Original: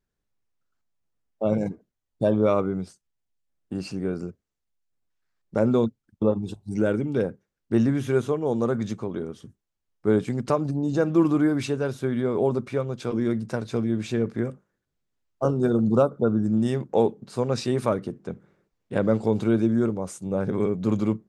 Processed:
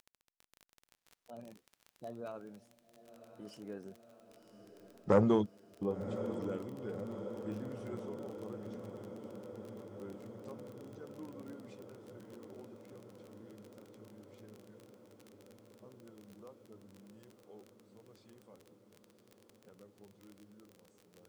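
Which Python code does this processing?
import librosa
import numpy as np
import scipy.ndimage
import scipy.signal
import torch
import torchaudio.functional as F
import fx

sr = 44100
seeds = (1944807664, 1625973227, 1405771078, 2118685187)

y = fx.spec_quant(x, sr, step_db=15)
y = fx.doppler_pass(y, sr, speed_mps=30, closest_m=3.2, pass_at_s=4.94)
y = fx.low_shelf(y, sr, hz=200.0, db=-5.5)
y = fx.dmg_crackle(y, sr, seeds[0], per_s=26.0, level_db=-49.0)
y = fx.echo_diffused(y, sr, ms=1069, feedback_pct=76, wet_db=-12.0)
y = fx.transformer_sat(y, sr, knee_hz=580.0)
y = y * 10.0 ** (6.5 / 20.0)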